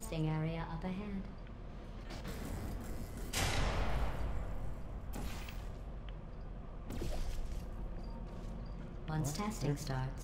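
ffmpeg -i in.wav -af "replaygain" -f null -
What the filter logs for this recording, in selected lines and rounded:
track_gain = +22.4 dB
track_peak = 0.056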